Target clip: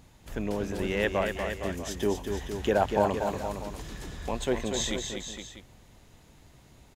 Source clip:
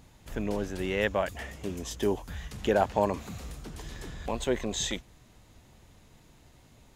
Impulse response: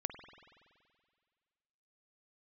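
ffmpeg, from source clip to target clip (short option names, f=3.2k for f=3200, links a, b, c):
-af "aecho=1:1:240|463|644:0.501|0.355|0.178"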